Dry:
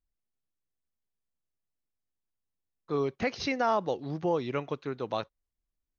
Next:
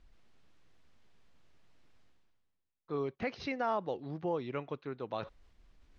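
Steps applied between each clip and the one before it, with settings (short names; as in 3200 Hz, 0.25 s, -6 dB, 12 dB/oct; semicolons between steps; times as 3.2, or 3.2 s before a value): LPF 3700 Hz 12 dB/oct; reverse; upward compressor, threshold -31 dBFS; reverse; gain -6 dB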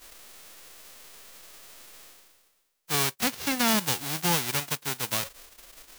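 spectral whitening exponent 0.1; gain +9 dB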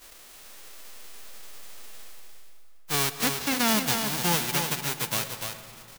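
echo 0.295 s -6 dB; on a send at -11.5 dB: reverb RT60 3.0 s, pre-delay 80 ms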